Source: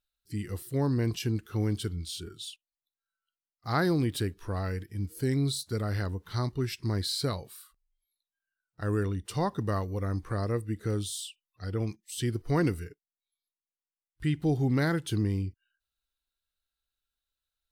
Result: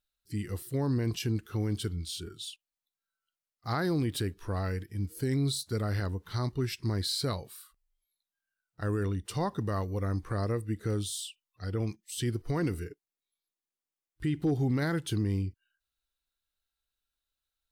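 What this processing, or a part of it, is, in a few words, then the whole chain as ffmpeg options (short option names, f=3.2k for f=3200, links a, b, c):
clipper into limiter: -filter_complex "[0:a]asettb=1/sr,asplit=3[a][b][c];[a]atrim=end=12.734[d];[b]atrim=start=12.73:end=14.54,asetpts=PTS-STARTPTS,afade=t=in:d=0.004:c=qsin,afade=t=out:st=1.806:d=0.004:c=qsin,equalizer=f=340:w=1.5:g=6[e];[c]atrim=start=14.536[f];[d][e]acrossfade=d=0.004:c1=hsin:c2=qsin[g];[g][f]acrossfade=d=0.004:c1=qsin:c2=hsin,asoftclip=type=hard:threshold=-15dB,alimiter=limit=-20.5dB:level=0:latency=1:release=41"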